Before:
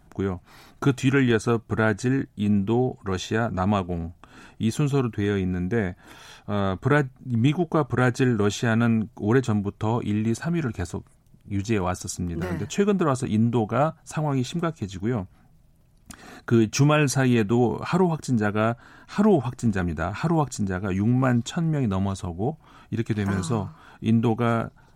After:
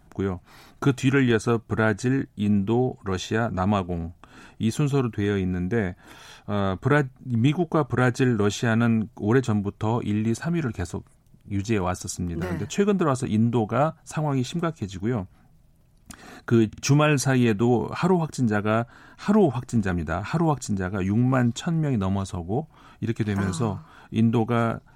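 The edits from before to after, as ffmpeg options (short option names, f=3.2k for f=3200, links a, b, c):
-filter_complex "[0:a]asplit=3[a][b][c];[a]atrim=end=16.732[d];[b]atrim=start=16.678:end=16.732[e];[c]atrim=start=16.678[f];[d][e]acrossfade=d=0.004:c1=hsin:c2=hsin[g];[g][f]acrossfade=d=0.004:c1=hsin:c2=hsin"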